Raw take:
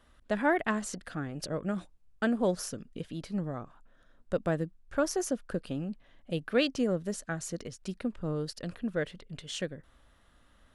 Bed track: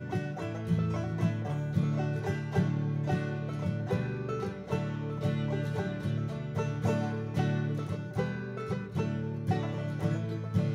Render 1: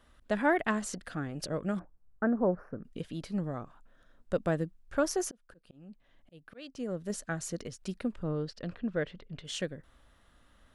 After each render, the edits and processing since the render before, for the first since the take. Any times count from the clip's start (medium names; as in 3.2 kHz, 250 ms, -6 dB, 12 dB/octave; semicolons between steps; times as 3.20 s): 1.79–2.85 s: inverse Chebyshev low-pass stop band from 3.2 kHz; 5.24–7.10 s: slow attack 768 ms; 8.23–9.45 s: distance through air 140 m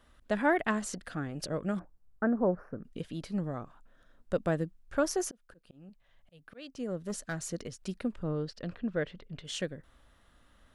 5.89–6.39 s: peaking EQ 290 Hz -14.5 dB; 7.00–7.46 s: hard clipper -30 dBFS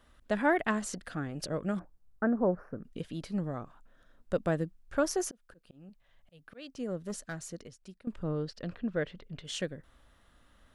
6.91–8.07 s: fade out, to -19 dB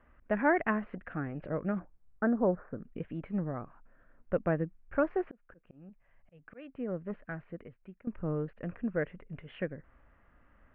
steep low-pass 2.5 kHz 48 dB/octave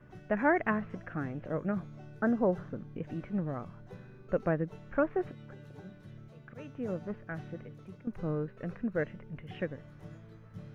add bed track -18 dB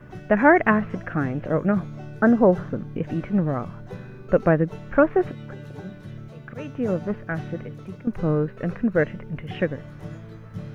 trim +11.5 dB